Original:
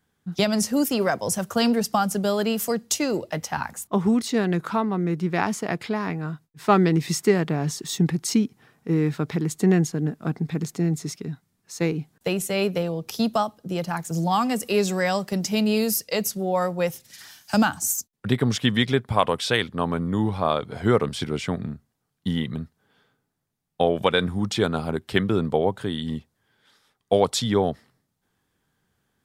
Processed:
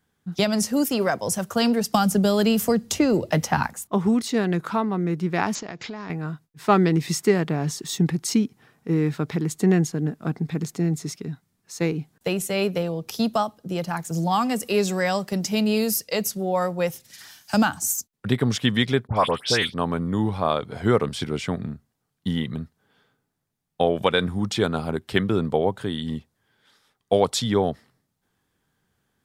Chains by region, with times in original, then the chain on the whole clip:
1.94–3.67 s: bass shelf 270 Hz +9 dB + three bands compressed up and down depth 100%
5.55–6.10 s: compression 12:1, threshold -30 dBFS + treble shelf 6 kHz +7.5 dB + careless resampling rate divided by 3×, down none, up filtered
19.07–19.74 s: peaking EQ 5.3 kHz +10 dB 0.41 oct + phase dispersion highs, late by 84 ms, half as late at 2.5 kHz
whole clip: none

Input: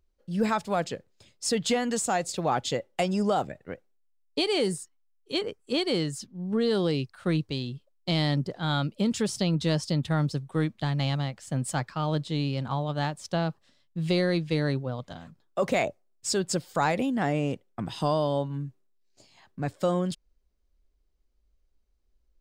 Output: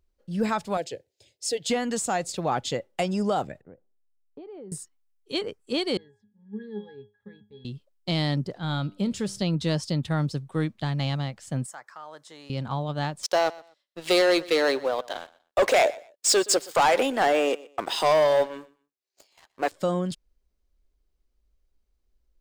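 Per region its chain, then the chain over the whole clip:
0.77–1.70 s: high-pass 87 Hz + static phaser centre 490 Hz, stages 4
3.61–4.72 s: Bessel low-pass 670 Hz + compression 2.5:1, threshold -47 dBFS
5.97–7.65 s: companding laws mixed up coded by A + peaking EQ 1.8 kHz +6.5 dB 0.62 oct + pitch-class resonator G#, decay 0.26 s
8.58–9.42 s: de-esser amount 30% + bass shelf 160 Hz +7 dB + feedback comb 98 Hz, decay 0.44 s, mix 40%
11.66–12.50 s: high-pass 780 Hz + high-order bell 3.3 kHz -10.5 dB 1.2 oct + compression 2:1, threshold -43 dBFS
13.23–19.72 s: high-pass 390 Hz 24 dB/octave + waveshaping leveller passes 3 + feedback delay 122 ms, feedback 22%, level -20.5 dB
whole clip: none

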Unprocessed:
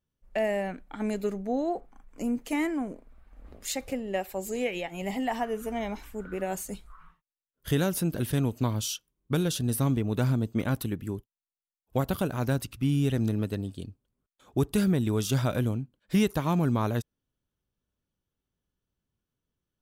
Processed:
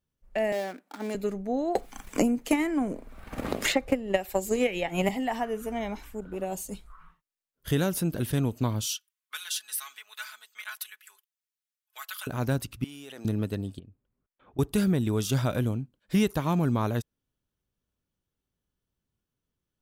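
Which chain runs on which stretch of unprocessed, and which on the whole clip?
0.52–1.15 s: dead-time distortion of 0.14 ms + high-pass 240 Hz 24 dB/octave
1.75–5.09 s: transient shaper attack +11 dB, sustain 0 dB + three bands compressed up and down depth 100%
6.20–6.72 s: high-order bell 1.6 kHz -8.5 dB 1.2 oct + transformer saturation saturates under 300 Hz
8.86–12.27 s: high-pass 1.4 kHz 24 dB/octave + comb 4.7 ms, depth 77%
12.84–13.25 s: high-pass 570 Hz + level held to a coarse grid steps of 22 dB
13.79–14.59 s: low-pass 2.6 kHz 24 dB/octave + compression 2.5:1, threshold -51 dBFS
whole clip: none

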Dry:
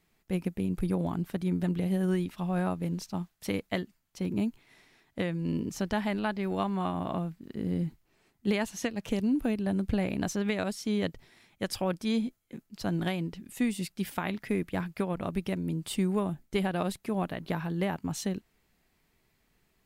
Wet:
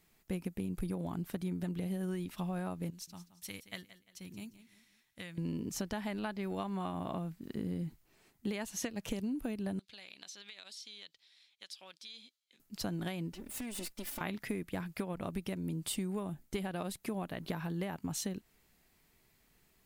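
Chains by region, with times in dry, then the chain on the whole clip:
2.90–5.38 s: amplifier tone stack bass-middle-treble 5-5-5 + band-stop 4.9 kHz, Q 26 + feedback delay 174 ms, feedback 37%, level -14.5 dB
9.79–12.60 s: band-pass filter 3.9 kHz, Q 2.6 + compression 5:1, threshold -47 dBFS
13.32–14.21 s: comb filter that takes the minimum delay 3.4 ms + compression 8:1, threshold -38 dBFS
whole clip: treble shelf 5.8 kHz +7 dB; compression, threshold -34 dBFS

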